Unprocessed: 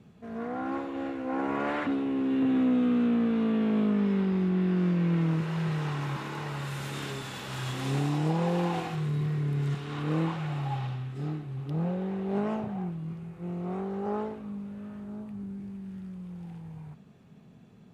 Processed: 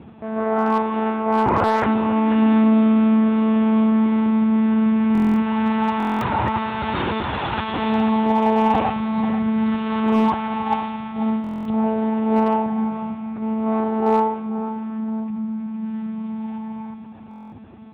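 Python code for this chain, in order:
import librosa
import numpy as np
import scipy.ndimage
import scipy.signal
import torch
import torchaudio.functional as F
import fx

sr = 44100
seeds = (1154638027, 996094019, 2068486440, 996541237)

p1 = fx.peak_eq(x, sr, hz=870.0, db=9.5, octaves=0.54)
p2 = fx.lpc_monotone(p1, sr, seeds[0], pitch_hz=220.0, order=16)
p3 = fx.air_absorb(p2, sr, metres=150.0)
p4 = fx.rider(p3, sr, range_db=3, speed_s=0.5)
p5 = p3 + (p4 * 10.0 ** (1.5 / 20.0))
p6 = scipy.signal.sosfilt(scipy.signal.butter(4, 71.0, 'highpass', fs=sr, output='sos'), p5)
p7 = p6 + fx.echo_single(p6, sr, ms=490, db=-12.0, dry=0)
p8 = np.clip(p7, -10.0 ** (-14.5 / 20.0), 10.0 ** (-14.5 / 20.0))
p9 = fx.buffer_glitch(p8, sr, at_s=(5.13, 5.98, 11.42, 17.29), block=1024, repeats=9)
y = p9 * 10.0 ** (5.0 / 20.0)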